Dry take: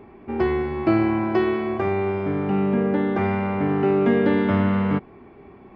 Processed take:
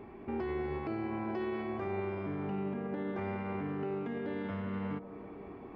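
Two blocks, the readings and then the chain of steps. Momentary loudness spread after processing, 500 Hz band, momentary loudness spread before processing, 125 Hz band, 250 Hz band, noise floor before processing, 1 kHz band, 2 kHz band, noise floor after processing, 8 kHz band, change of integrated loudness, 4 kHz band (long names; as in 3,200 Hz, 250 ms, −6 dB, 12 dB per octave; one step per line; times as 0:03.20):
4 LU, −15.0 dB, 5 LU, −15.0 dB, −15.5 dB, −47 dBFS, −14.0 dB, −15.0 dB, −49 dBFS, can't be measured, −15.5 dB, −15.5 dB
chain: downward compressor, threshold −28 dBFS, peak gain reduction 13 dB
brickwall limiter −25 dBFS, peak gain reduction 7 dB
on a send: delay with a band-pass on its return 193 ms, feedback 80%, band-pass 430 Hz, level −8.5 dB
on the sum: level −3.5 dB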